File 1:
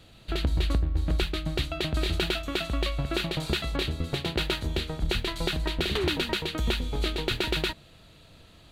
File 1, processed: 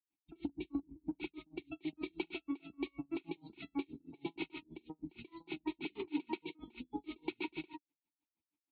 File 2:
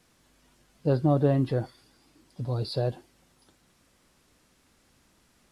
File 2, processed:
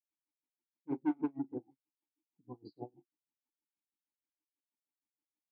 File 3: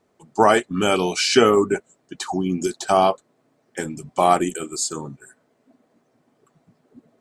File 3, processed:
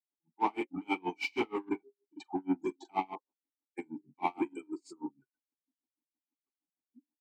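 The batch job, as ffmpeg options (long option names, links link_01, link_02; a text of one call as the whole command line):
ffmpeg -i in.wav -filter_complex "[0:a]bandreject=frequency=134.9:width_type=h:width=4,bandreject=frequency=269.8:width_type=h:width=4,bandreject=frequency=404.7:width_type=h:width=4,bandreject=frequency=539.6:width_type=h:width=4,afftdn=noise_reduction=29:noise_floor=-32,lowshelf=frequency=160:gain=-8,asplit=2[link_01][link_02];[link_02]aeval=exprs='0.126*(abs(mod(val(0)/0.126+3,4)-2)-1)':channel_layout=same,volume=-3.5dB[link_03];[link_01][link_03]amix=inputs=2:normalize=0,asplit=3[link_04][link_05][link_06];[link_04]bandpass=frequency=300:width_type=q:width=8,volume=0dB[link_07];[link_05]bandpass=frequency=870:width_type=q:width=8,volume=-6dB[link_08];[link_06]bandpass=frequency=2240:width_type=q:width=8,volume=-9dB[link_09];[link_07][link_08][link_09]amix=inputs=3:normalize=0,acrossover=split=540|1800[link_10][link_11][link_12];[link_10]asoftclip=type=tanh:threshold=-30dB[link_13];[link_12]aexciter=amount=4.8:drive=2.4:freq=9600[link_14];[link_13][link_11][link_14]amix=inputs=3:normalize=0,asplit=2[link_15][link_16];[link_16]adelay=43,volume=-6dB[link_17];[link_15][link_17]amix=inputs=2:normalize=0,aeval=exprs='val(0)*pow(10,-34*(0.5-0.5*cos(2*PI*6.3*n/s))/20)':channel_layout=same,volume=3dB" out.wav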